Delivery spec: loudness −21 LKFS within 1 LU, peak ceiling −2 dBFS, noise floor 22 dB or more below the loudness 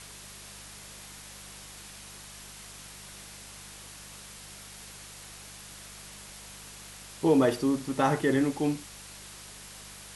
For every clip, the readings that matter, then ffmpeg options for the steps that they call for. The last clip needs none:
mains hum 50 Hz; hum harmonics up to 200 Hz; level of the hum −52 dBFS; background noise floor −47 dBFS; target noise floor −49 dBFS; integrated loudness −26.5 LKFS; sample peak −11.5 dBFS; target loudness −21.0 LKFS
→ -af "bandreject=frequency=50:width_type=h:width=4,bandreject=frequency=100:width_type=h:width=4,bandreject=frequency=150:width_type=h:width=4,bandreject=frequency=200:width_type=h:width=4"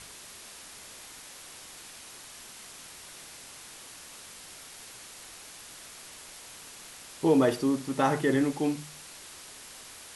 mains hum none found; background noise floor −48 dBFS; target noise floor −49 dBFS
→ -af "afftdn=noise_reduction=6:noise_floor=-48"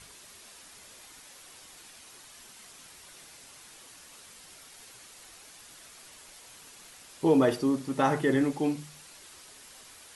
background noise floor −52 dBFS; integrated loudness −27.0 LKFS; sample peak −11.5 dBFS; target loudness −21.0 LKFS
→ -af "volume=6dB"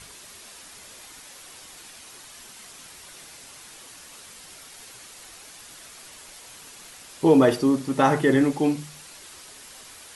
integrated loudness −21.0 LKFS; sample peak −5.5 dBFS; background noise floor −46 dBFS

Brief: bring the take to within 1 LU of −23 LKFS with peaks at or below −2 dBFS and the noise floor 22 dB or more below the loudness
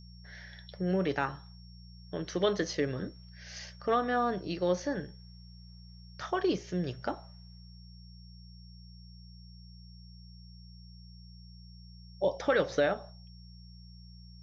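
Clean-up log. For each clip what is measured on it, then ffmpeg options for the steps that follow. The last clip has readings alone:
mains hum 60 Hz; hum harmonics up to 180 Hz; level of the hum −48 dBFS; interfering tone 5,500 Hz; level of the tone −58 dBFS; integrated loudness −32.5 LKFS; sample peak −15.0 dBFS; target loudness −23.0 LKFS
→ -af "bandreject=frequency=60:width_type=h:width=4,bandreject=frequency=120:width_type=h:width=4,bandreject=frequency=180:width_type=h:width=4"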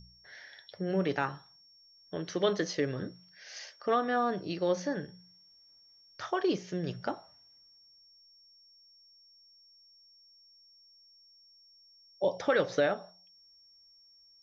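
mains hum none found; interfering tone 5,500 Hz; level of the tone −58 dBFS
→ -af "bandreject=frequency=5500:width=30"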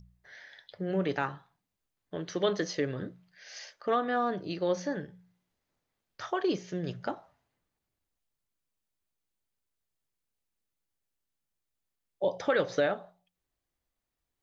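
interfering tone none found; integrated loudness −32.0 LKFS; sample peak −15.0 dBFS; target loudness −23.0 LKFS
→ -af "volume=9dB"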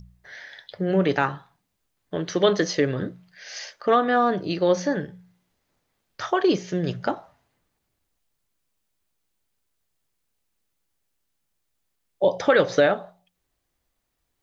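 integrated loudness −23.0 LKFS; sample peak −6.0 dBFS; background noise floor −77 dBFS

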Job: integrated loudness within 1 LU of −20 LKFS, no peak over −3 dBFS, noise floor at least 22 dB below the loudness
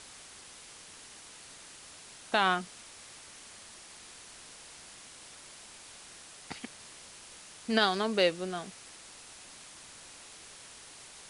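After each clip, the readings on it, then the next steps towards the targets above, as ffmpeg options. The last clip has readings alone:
background noise floor −51 dBFS; target noise floor −53 dBFS; integrated loudness −30.5 LKFS; sample peak −11.0 dBFS; target loudness −20.0 LKFS
→ -af "afftdn=noise_reduction=6:noise_floor=-51"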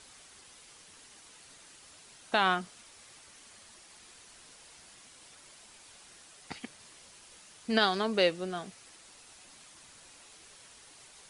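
background noise floor −56 dBFS; integrated loudness −30.0 LKFS; sample peak −11.0 dBFS; target loudness −20.0 LKFS
→ -af "volume=10dB,alimiter=limit=-3dB:level=0:latency=1"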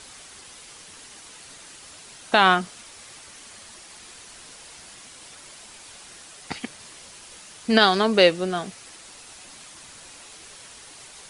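integrated loudness −20.5 LKFS; sample peak −3.0 dBFS; background noise floor −46 dBFS

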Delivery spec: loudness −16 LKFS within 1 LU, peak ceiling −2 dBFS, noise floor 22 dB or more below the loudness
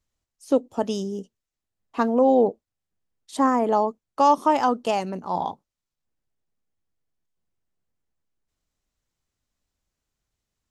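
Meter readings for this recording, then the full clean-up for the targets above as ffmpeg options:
integrated loudness −23.0 LKFS; sample peak −6.5 dBFS; target loudness −16.0 LKFS
→ -af "volume=7dB,alimiter=limit=-2dB:level=0:latency=1"

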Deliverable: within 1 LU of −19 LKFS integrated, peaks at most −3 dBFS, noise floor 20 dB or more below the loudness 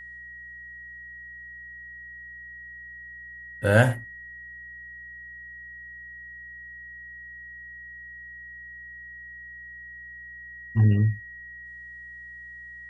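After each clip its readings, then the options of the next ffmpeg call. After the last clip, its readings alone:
mains hum 60 Hz; hum harmonics up to 180 Hz; level of the hum −56 dBFS; interfering tone 1,900 Hz; level of the tone −40 dBFS; integrated loudness −32.0 LKFS; sample peak −5.0 dBFS; target loudness −19.0 LKFS
→ -af "bandreject=frequency=60:width_type=h:width=4,bandreject=frequency=120:width_type=h:width=4,bandreject=frequency=180:width_type=h:width=4"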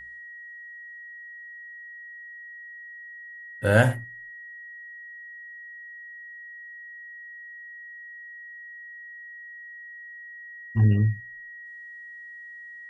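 mains hum none found; interfering tone 1,900 Hz; level of the tone −40 dBFS
→ -af "bandreject=frequency=1900:width=30"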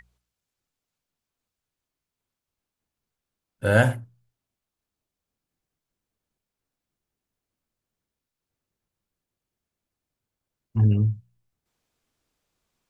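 interfering tone none found; integrated loudness −23.0 LKFS; sample peak −5.5 dBFS; target loudness −19.0 LKFS
→ -af "volume=4dB,alimiter=limit=-3dB:level=0:latency=1"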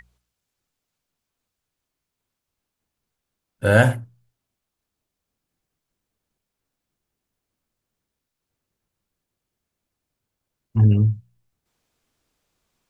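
integrated loudness −19.0 LKFS; sample peak −3.0 dBFS; background noise floor −83 dBFS

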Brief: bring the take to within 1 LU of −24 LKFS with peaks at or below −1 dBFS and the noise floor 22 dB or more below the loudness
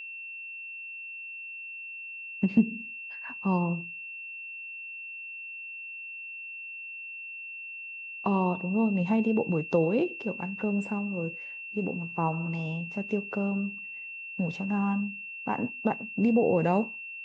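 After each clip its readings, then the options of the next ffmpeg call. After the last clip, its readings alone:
interfering tone 2,700 Hz; level of the tone −38 dBFS; integrated loudness −31.0 LKFS; sample peak −11.5 dBFS; target loudness −24.0 LKFS
→ -af "bandreject=frequency=2700:width=30"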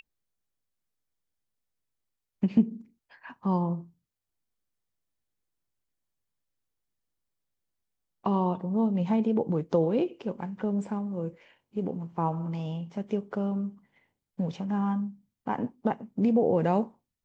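interfering tone none found; integrated loudness −29.5 LKFS; sample peak −11.5 dBFS; target loudness −24.0 LKFS
→ -af "volume=5.5dB"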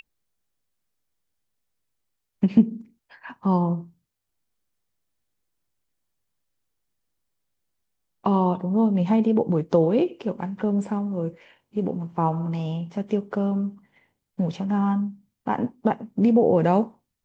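integrated loudness −24.0 LKFS; sample peak −6.0 dBFS; background noise floor −80 dBFS

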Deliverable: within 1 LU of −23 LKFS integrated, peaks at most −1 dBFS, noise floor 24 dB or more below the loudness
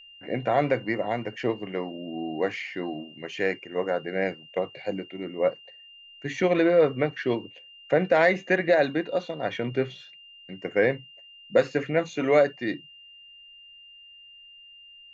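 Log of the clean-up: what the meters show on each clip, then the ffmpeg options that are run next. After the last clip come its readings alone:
interfering tone 2,800 Hz; level of the tone −47 dBFS; integrated loudness −26.5 LKFS; sample peak −8.5 dBFS; target loudness −23.0 LKFS
→ -af "bandreject=frequency=2800:width=30"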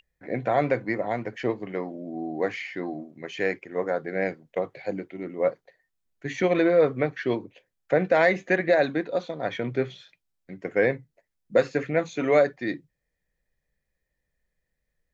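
interfering tone none found; integrated loudness −26.5 LKFS; sample peak −8.5 dBFS; target loudness −23.0 LKFS
→ -af "volume=3.5dB"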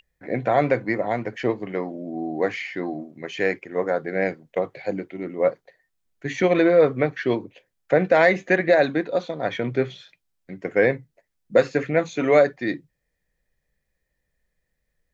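integrated loudness −23.0 LKFS; sample peak −5.0 dBFS; background noise floor −77 dBFS

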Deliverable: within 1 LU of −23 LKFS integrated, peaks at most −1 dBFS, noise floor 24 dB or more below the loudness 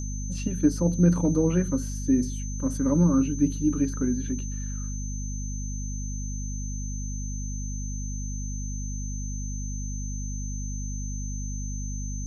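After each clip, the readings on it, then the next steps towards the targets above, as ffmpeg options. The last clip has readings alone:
mains hum 50 Hz; hum harmonics up to 250 Hz; level of the hum −29 dBFS; interfering tone 6,200 Hz; level of the tone −39 dBFS; integrated loudness −28.5 LKFS; sample peak −8.5 dBFS; target loudness −23.0 LKFS
→ -af "bandreject=frequency=50:width_type=h:width=4,bandreject=frequency=100:width_type=h:width=4,bandreject=frequency=150:width_type=h:width=4,bandreject=frequency=200:width_type=h:width=4,bandreject=frequency=250:width_type=h:width=4"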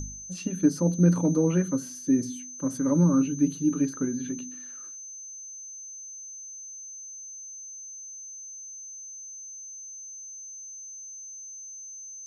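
mains hum none found; interfering tone 6,200 Hz; level of the tone −39 dBFS
→ -af "bandreject=frequency=6200:width=30"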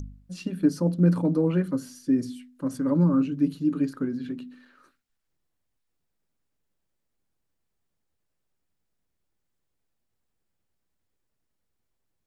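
interfering tone none found; integrated loudness −25.5 LKFS; sample peak −9.5 dBFS; target loudness −23.0 LKFS
→ -af "volume=2.5dB"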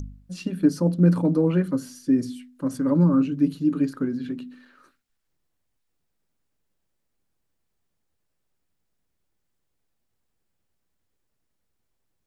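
integrated loudness −23.0 LKFS; sample peak −7.0 dBFS; background noise floor −76 dBFS

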